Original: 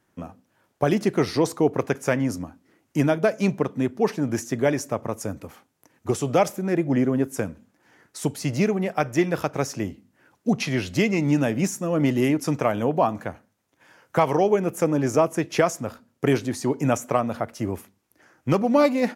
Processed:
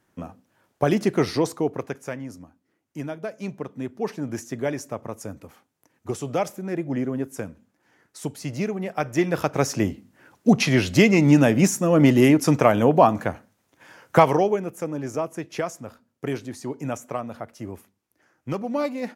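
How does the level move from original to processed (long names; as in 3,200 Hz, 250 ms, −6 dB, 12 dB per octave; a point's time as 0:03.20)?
0:01.29 +0.5 dB
0:02.25 −11.5 dB
0:03.24 −11.5 dB
0:04.17 −5 dB
0:08.74 −5 dB
0:09.81 +5.5 dB
0:14.18 +5.5 dB
0:14.73 −7.5 dB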